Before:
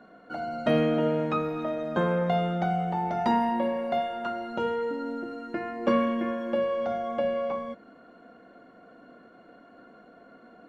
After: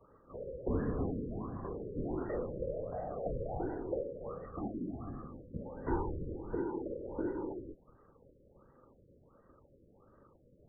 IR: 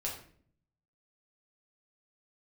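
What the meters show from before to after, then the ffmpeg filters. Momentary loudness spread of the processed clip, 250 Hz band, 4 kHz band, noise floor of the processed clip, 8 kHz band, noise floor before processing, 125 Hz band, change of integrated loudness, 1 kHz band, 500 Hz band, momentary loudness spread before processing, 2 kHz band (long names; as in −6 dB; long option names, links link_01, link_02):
9 LU, −10.0 dB, below −40 dB, −65 dBFS, can't be measured, −54 dBFS, −7.0 dB, −11.5 dB, −17.0 dB, −11.0 dB, 10 LU, −18.5 dB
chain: -af "highpass=frequency=190:width_type=q:width=0.5412,highpass=frequency=190:width_type=q:width=1.307,lowpass=frequency=3100:width_type=q:width=0.5176,lowpass=frequency=3100:width_type=q:width=0.7071,lowpass=frequency=3100:width_type=q:width=1.932,afreqshift=-200,afftfilt=real='hypot(re,im)*cos(2*PI*random(0))':imag='hypot(re,im)*sin(2*PI*random(1))':win_size=512:overlap=0.75,afftfilt=real='re*lt(b*sr/1024,560*pow(2000/560,0.5+0.5*sin(2*PI*1.4*pts/sr)))':imag='im*lt(b*sr/1024,560*pow(2000/560,0.5+0.5*sin(2*PI*1.4*pts/sr)))':win_size=1024:overlap=0.75,volume=-3.5dB"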